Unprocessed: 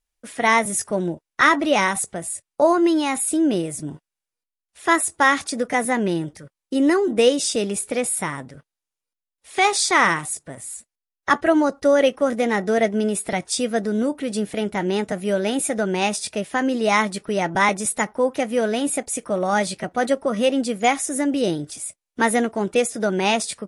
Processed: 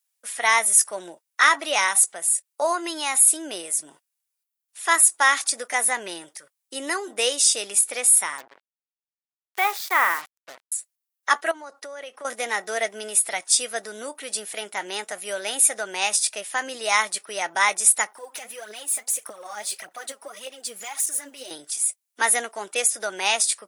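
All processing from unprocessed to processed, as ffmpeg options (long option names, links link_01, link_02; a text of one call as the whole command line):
ffmpeg -i in.wav -filter_complex "[0:a]asettb=1/sr,asplit=3[link_01][link_02][link_03];[link_01]atrim=end=8.384[link_04];[link_02]atrim=start=8.38:end=10.72,asetpts=PTS-STARTPTS,afade=type=in:duration=0.004:curve=qsin,afade=type=out:start_time=2.336:duration=0.004:curve=qsin,highpass=110,lowpass=2000,acrusher=bits=5:mix=0:aa=0.5[link_05];[link_03]atrim=start=10.716[link_06];[link_04][link_05]acrossfade=duration=0.004:curve1=hsin:curve2=qsin[link_07];[link_07][link_06]acrossfade=duration=0.004:curve1=qsin:curve2=hsin,asettb=1/sr,asplit=3[link_08][link_09][link_10];[link_08]atrim=end=11.514[link_11];[link_09]atrim=start=11.51:end=12.25,asetpts=PTS-STARTPTS,afade=type=in:duration=0.004:curve=qsin,afade=type=out:start_time=0.736:duration=0.004:curve=qsin,highshelf=frequency=4200:gain=-7.5,acompressor=threshold=-26dB:ratio=8:attack=3.2:release=140:knee=1:detection=peak[link_12];[link_10]atrim=start=12.246[link_13];[link_11][link_12]acrossfade=duration=0.004:curve1=hsin:curve2=qsin[link_14];[link_14][link_13]acrossfade=duration=0.004:curve1=qsin:curve2=hsin,asettb=1/sr,asplit=3[link_15][link_16][link_17];[link_15]atrim=end=18.124[link_18];[link_16]atrim=start=18.12:end=21.51,asetpts=PTS-STARTPTS,afade=type=in:duration=0.004:curve=qsin,afade=type=out:start_time=3.386:duration=0.004:curve=qsin,acompressor=threshold=-30dB:ratio=6:attack=3.2:release=140:knee=1:detection=peak,aphaser=in_gain=1:out_gain=1:delay=5:decay=0.63:speed=1.7:type=triangular[link_19];[link_17]atrim=start=21.506[link_20];[link_18][link_19]acrossfade=duration=0.004:curve1=hsin:curve2=qsin[link_21];[link_21][link_20]acrossfade=duration=0.004:curve1=qsin:curve2=hsin,highpass=800,aemphasis=mode=production:type=50kf,volume=-1.5dB" out.wav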